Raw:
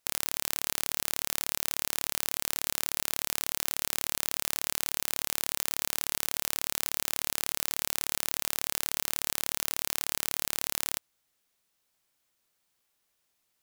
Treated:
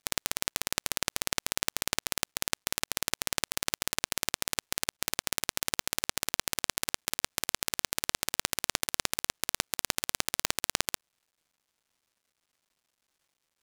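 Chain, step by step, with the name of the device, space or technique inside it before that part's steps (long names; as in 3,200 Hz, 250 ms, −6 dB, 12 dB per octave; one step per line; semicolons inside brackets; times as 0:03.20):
early companding sampler (sample-rate reduction 19,000 Hz, jitter 0%; log-companded quantiser 6 bits)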